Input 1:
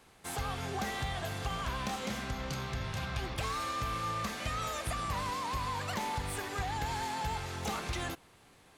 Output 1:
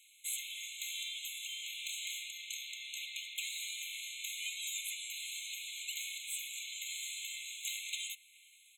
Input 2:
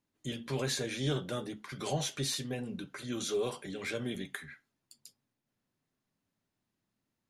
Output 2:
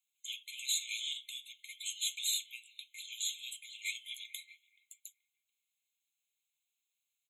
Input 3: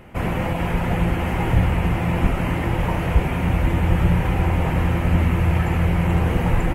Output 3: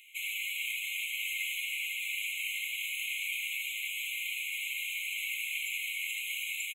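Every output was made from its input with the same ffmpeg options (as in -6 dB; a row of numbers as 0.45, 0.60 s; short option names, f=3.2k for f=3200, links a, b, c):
-filter_complex "[0:a]acrossover=split=4300[a][b];[a]asplit=2[c][d];[d]adelay=429,lowpass=f=930:p=1,volume=-11.5dB,asplit=2[e][f];[f]adelay=429,lowpass=f=930:p=1,volume=0.54,asplit=2[g][h];[h]adelay=429,lowpass=f=930:p=1,volume=0.54,asplit=2[i][j];[j]adelay=429,lowpass=f=930:p=1,volume=0.54,asplit=2[k][l];[l]adelay=429,lowpass=f=930:p=1,volume=0.54,asplit=2[m][n];[n]adelay=429,lowpass=f=930:p=1,volume=0.54[o];[c][e][g][i][k][m][o]amix=inputs=7:normalize=0[p];[b]acontrast=77[q];[p][q]amix=inputs=2:normalize=0,afftfilt=real='re*eq(mod(floor(b*sr/1024/2100),2),1)':imag='im*eq(mod(floor(b*sr/1024/2100),2),1)':win_size=1024:overlap=0.75,volume=1dB"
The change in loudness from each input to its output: -3.5, -2.0, -12.5 LU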